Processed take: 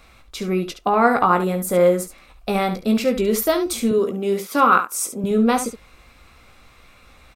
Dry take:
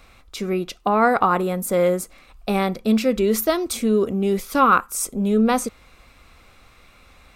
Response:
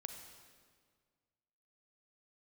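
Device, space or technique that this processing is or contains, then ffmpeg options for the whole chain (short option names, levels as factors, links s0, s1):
slapback doubling: -filter_complex "[0:a]asettb=1/sr,asplit=3[s0][s1][s2];[s0]atrim=end=3.914[s3];[s1]atrim=start=3.91:end=5.24,asetpts=PTS-STARTPTS,afade=t=in:d=0.004:c=qsin,afade=t=out:st=1.326:d=0.004:c=qsin,highpass=210[s4];[s2]atrim=start=5.236[s5];[s3][s4]acrossfade=d=0.004:c1=hsin:c2=qsin[s6];[s6][s5]acrossfade=d=0.004:c1=qsin:c2=hsin,asplit=3[s7][s8][s9];[s8]adelay=17,volume=0.422[s10];[s9]adelay=70,volume=0.316[s11];[s7][s10][s11]amix=inputs=3:normalize=0"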